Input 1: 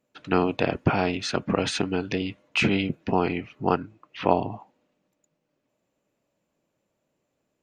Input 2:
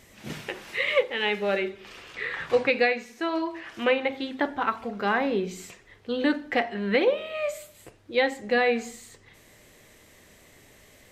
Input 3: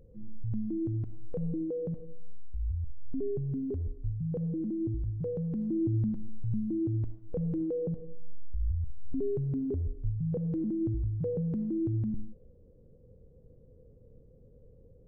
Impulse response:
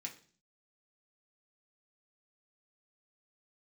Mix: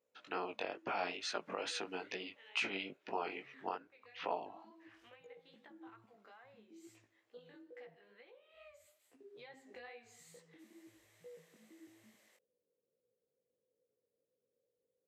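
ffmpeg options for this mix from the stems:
-filter_complex "[0:a]volume=0.422,asplit=2[s0][s1];[1:a]acompressor=threshold=0.0224:ratio=16,adelay=1250,volume=0.282,afade=t=in:st=9.18:d=0.42:silence=0.421697[s2];[2:a]volume=0.158[s3];[s1]apad=whole_len=545318[s4];[s2][s4]sidechaincompress=threshold=0.00891:ratio=8:attack=7.5:release=175[s5];[s0][s5][s3]amix=inputs=3:normalize=0,flanger=delay=16:depth=5.6:speed=2.3,highpass=520,alimiter=level_in=1.06:limit=0.0631:level=0:latency=1:release=427,volume=0.944"

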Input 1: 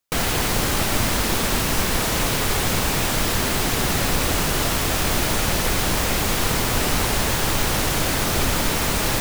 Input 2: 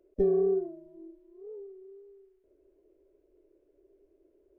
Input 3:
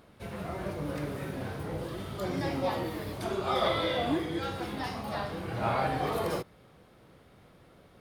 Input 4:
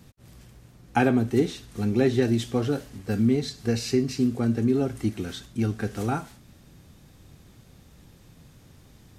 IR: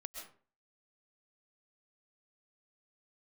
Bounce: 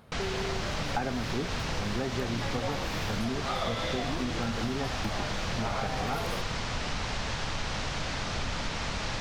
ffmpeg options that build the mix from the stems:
-filter_complex "[0:a]lowpass=f=5900:w=0.5412,lowpass=f=5900:w=1.3066,volume=0.355[s0];[1:a]volume=0.668[s1];[2:a]volume=0.841,asplit=2[s2][s3];[s3]volume=0.422[s4];[3:a]bandpass=f=940:t=q:w=0.77:csg=0,aemphasis=mode=reproduction:type=bsi,volume=1.06[s5];[4:a]atrim=start_sample=2205[s6];[s4][s6]afir=irnorm=-1:irlink=0[s7];[s0][s1][s2][s5][s7]amix=inputs=5:normalize=0,equalizer=f=350:w=1.7:g=-7,acompressor=threshold=0.0447:ratio=6"

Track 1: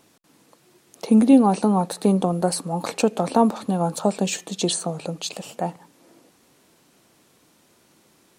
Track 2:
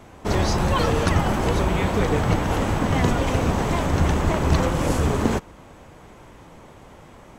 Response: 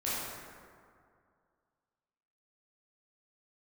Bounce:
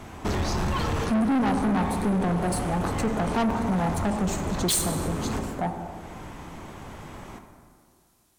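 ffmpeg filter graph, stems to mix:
-filter_complex "[0:a]afwtdn=0.0316,crystalizer=i=2:c=0,volume=1.19,asplit=3[s0][s1][s2];[s1]volume=0.2[s3];[1:a]acompressor=threshold=0.0562:ratio=6,volume=1.41,asplit=2[s4][s5];[s5]volume=0.282[s6];[s2]apad=whole_len=325713[s7];[s4][s7]sidechaincompress=threshold=0.0282:ratio=8:attack=5.6:release=461[s8];[2:a]atrim=start_sample=2205[s9];[s3][s6]amix=inputs=2:normalize=0[s10];[s10][s9]afir=irnorm=-1:irlink=0[s11];[s0][s8][s11]amix=inputs=3:normalize=0,equalizer=f=520:w=2.6:g=-6,asoftclip=type=tanh:threshold=0.0944"

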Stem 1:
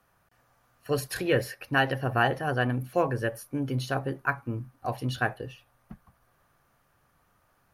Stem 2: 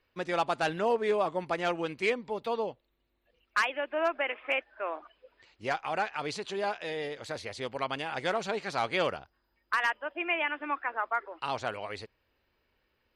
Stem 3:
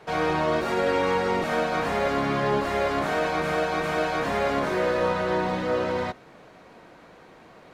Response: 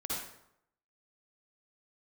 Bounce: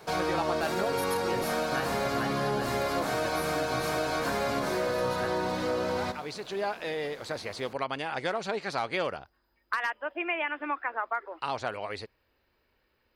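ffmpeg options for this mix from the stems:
-filter_complex "[0:a]volume=0.422,asplit=2[s0][s1];[1:a]bass=f=250:g=-1,treble=f=4000:g=-11,volume=1.41[s2];[2:a]bandreject=f=1900:w=16,volume=0.841,asplit=2[s3][s4];[s4]volume=0.158[s5];[s1]apad=whole_len=580195[s6];[s2][s6]sidechaincompress=threshold=0.00224:ratio=8:attack=16:release=858[s7];[3:a]atrim=start_sample=2205[s8];[s5][s8]afir=irnorm=-1:irlink=0[s9];[s0][s7][s3][s9]amix=inputs=4:normalize=0,aexciter=amount=3.1:drive=3.1:freq=4100,acompressor=threshold=0.0447:ratio=3"

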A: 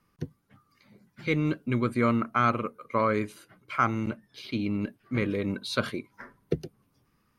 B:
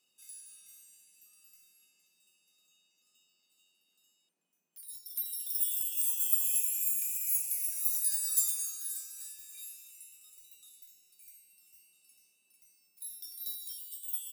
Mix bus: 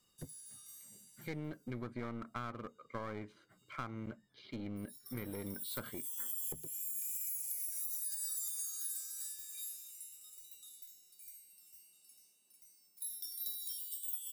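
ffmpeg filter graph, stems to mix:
-filter_complex "[0:a]lowpass=4000,aeval=exprs='clip(val(0),-1,0.0266)':c=same,volume=0.282,asplit=2[s0][s1];[1:a]alimiter=limit=0.075:level=0:latency=1:release=79,volume=1.19[s2];[s1]apad=whole_len=631607[s3];[s2][s3]sidechaincompress=threshold=0.00316:ratio=8:attack=27:release=571[s4];[s0][s4]amix=inputs=2:normalize=0,bandreject=f=2600:w=5.2,acompressor=threshold=0.0141:ratio=6"

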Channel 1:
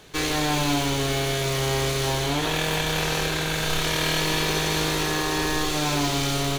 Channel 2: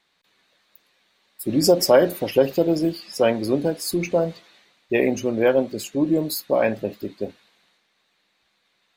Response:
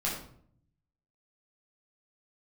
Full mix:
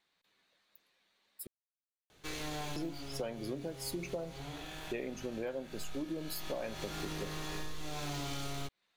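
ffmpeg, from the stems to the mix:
-filter_complex "[0:a]adelay=2100,volume=0.355,afade=t=in:st=6.34:d=0.5:silence=0.398107,asplit=2[s0][s1];[s1]volume=0.251[s2];[1:a]volume=0.299,asplit=3[s3][s4][s5];[s3]atrim=end=1.47,asetpts=PTS-STARTPTS,afade=t=out:st=1.466:d=0.004:c=hsin[s6];[s4]atrim=start=1.47:end=2.76,asetpts=PTS-STARTPTS,volume=0[s7];[s5]atrim=start=2.76,asetpts=PTS-STARTPTS,afade=t=in:d=0.004:c=hsin[s8];[s6][s7][s8]concat=n=3:v=0:a=1,asplit=2[s9][s10];[s10]apad=whole_len=383076[s11];[s0][s11]sidechaincompress=threshold=0.00501:ratio=8:attack=16:release=986[s12];[2:a]atrim=start_sample=2205[s13];[s2][s13]afir=irnorm=-1:irlink=0[s14];[s12][s9][s14]amix=inputs=3:normalize=0,acompressor=threshold=0.0178:ratio=10"

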